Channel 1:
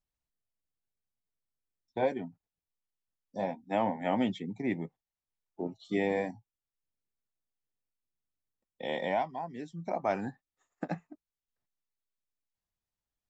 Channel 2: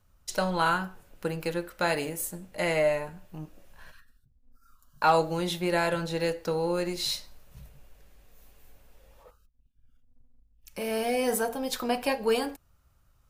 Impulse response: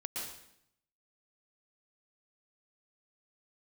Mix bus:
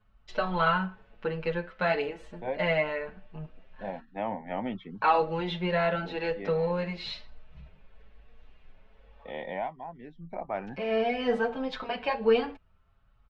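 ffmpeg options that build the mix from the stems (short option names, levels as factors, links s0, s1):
-filter_complex "[0:a]adelay=450,volume=0.708[s0];[1:a]highshelf=f=4300:g=6,aecho=1:1:4.6:0.35,asplit=2[s1][s2];[s2]adelay=6.9,afreqshift=1[s3];[s1][s3]amix=inputs=2:normalize=1,volume=1.33,asplit=2[s4][s5];[s5]apad=whole_len=605981[s6];[s0][s6]sidechaincompress=threshold=0.0141:ratio=8:attack=16:release=241[s7];[s7][s4]amix=inputs=2:normalize=0,lowpass=f=3100:w=0.5412,lowpass=f=3100:w=1.3066,equalizer=f=290:t=o:w=0.61:g=-3.5"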